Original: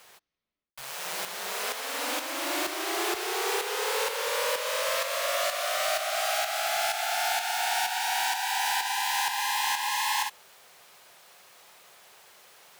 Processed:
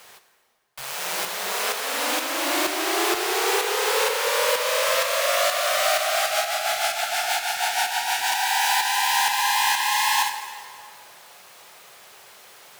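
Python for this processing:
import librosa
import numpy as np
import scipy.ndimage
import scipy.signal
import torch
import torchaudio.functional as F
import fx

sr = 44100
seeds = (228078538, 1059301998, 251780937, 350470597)

y = fx.rotary(x, sr, hz=6.3, at=(6.26, 8.32))
y = fx.rev_plate(y, sr, seeds[0], rt60_s=2.3, hf_ratio=0.75, predelay_ms=0, drr_db=7.0)
y = F.gain(torch.from_numpy(y), 6.0).numpy()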